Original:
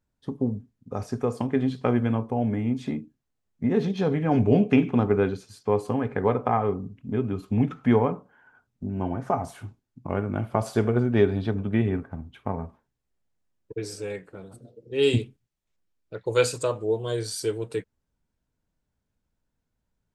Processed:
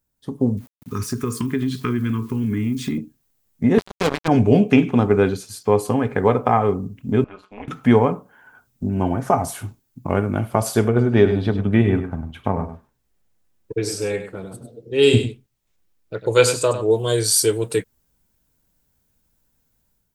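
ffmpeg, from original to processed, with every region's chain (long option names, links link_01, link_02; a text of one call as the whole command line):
ffmpeg -i in.wav -filter_complex "[0:a]asettb=1/sr,asplit=3[link_01][link_02][link_03];[link_01]atrim=end=0.574[link_04];[link_02]atrim=start=0.57:end=2.98,asetpts=PTS-STARTPTS,afade=type=in:duration=0.004:curve=qsin,afade=type=out:start_time=2.406:duration=0.004:curve=qsin,asuperstop=centerf=650:order=8:qfactor=1.1,acompressor=threshold=-28dB:ratio=3:attack=3.2:release=140:knee=1:detection=peak,aeval=exprs='val(0)*gte(abs(val(0)),0.00133)':channel_layout=same[link_05];[link_03]atrim=start=2.976[link_06];[link_04][link_05]acrossfade=duration=0.004:curve1=hsin:curve2=qsin[link_07];[link_07][link_06]acrossfade=duration=0.004:curve1=qsin:curve2=hsin,asettb=1/sr,asplit=3[link_08][link_09][link_10];[link_08]atrim=end=3.784[link_11];[link_09]atrim=start=3.78:end=4.28,asetpts=PTS-STARTPTS,afade=type=in:duration=0.004:curve=qsin,afade=type=out:start_time=0.496:duration=0.004:curve=qsin,highpass=frequency=350:poles=1,agate=range=-33dB:threshold=-29dB:ratio=3:release=100:detection=peak,acrusher=bits=3:mix=0:aa=0.5[link_12];[link_10]atrim=start=4.276[link_13];[link_11][link_12]acrossfade=duration=0.004:curve1=hsin:curve2=qsin[link_14];[link_14][link_13]acrossfade=duration=0.004:curve1=qsin:curve2=hsin,asettb=1/sr,asplit=3[link_15][link_16][link_17];[link_15]atrim=end=7.244[link_18];[link_16]atrim=start=7.24:end=7.68,asetpts=PTS-STARTPTS,afade=type=in:duration=0.004:curve=qsin,afade=type=out:start_time=0.436:duration=0.004:curve=qsin,highpass=730,lowpass=2500,tremolo=f=200:d=0.919[link_19];[link_17]atrim=start=7.676[link_20];[link_18][link_19]acrossfade=duration=0.004:curve1=hsin:curve2=qsin[link_21];[link_21][link_20]acrossfade=duration=0.004:curve1=qsin:curve2=hsin,asettb=1/sr,asplit=3[link_22][link_23][link_24];[link_22]atrim=end=10.884[link_25];[link_23]atrim=start=10.88:end=16.91,asetpts=PTS-STARTPTS,afade=type=in:duration=0.004:curve=qsin,afade=type=out:start_time=6.026:duration=0.004:curve=qsin,lowpass=frequency=3900:poles=1,aecho=1:1:100:0.316,atrim=end_sample=265923[link_26];[link_24]atrim=start=16.906[link_27];[link_25][link_26]acrossfade=duration=0.004:curve1=hsin:curve2=qsin[link_28];[link_28][link_27]acrossfade=duration=0.004:curve1=qsin:curve2=hsin,aemphasis=mode=production:type=50fm,dynaudnorm=framelen=150:gausssize=5:maxgain=9dB" out.wav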